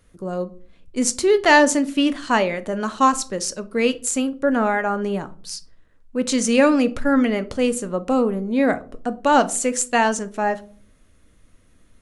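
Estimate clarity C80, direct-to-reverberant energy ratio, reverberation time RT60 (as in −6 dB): 24.5 dB, 11.5 dB, 0.45 s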